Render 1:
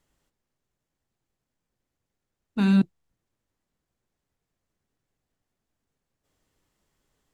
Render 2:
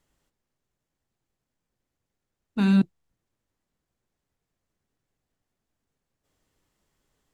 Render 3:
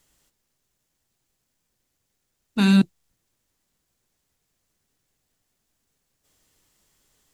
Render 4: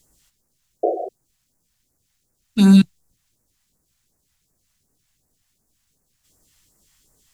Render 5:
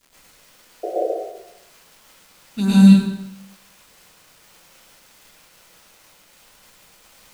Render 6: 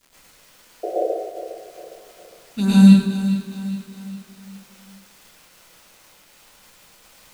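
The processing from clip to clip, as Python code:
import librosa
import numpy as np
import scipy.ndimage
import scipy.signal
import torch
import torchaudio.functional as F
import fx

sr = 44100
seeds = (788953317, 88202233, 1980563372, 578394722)

y1 = x
y2 = fx.high_shelf(y1, sr, hz=2800.0, db=11.5)
y2 = y2 * librosa.db_to_amplitude(3.0)
y3 = fx.spec_paint(y2, sr, seeds[0], shape='noise', start_s=0.83, length_s=0.26, low_hz=330.0, high_hz=750.0, level_db=-22.0)
y3 = fx.phaser_stages(y3, sr, stages=2, low_hz=340.0, high_hz=3100.0, hz=2.7, feedback_pct=25)
y3 = y3 * librosa.db_to_amplitude(5.5)
y4 = fx.dmg_crackle(y3, sr, seeds[1], per_s=340.0, level_db=-34.0)
y4 = fx.rev_plate(y4, sr, seeds[2], rt60_s=0.88, hf_ratio=0.85, predelay_ms=90, drr_db=-8.5)
y4 = y4 * librosa.db_to_amplitude(-8.5)
y5 = fx.echo_feedback(y4, sr, ms=409, feedback_pct=46, wet_db=-11.5)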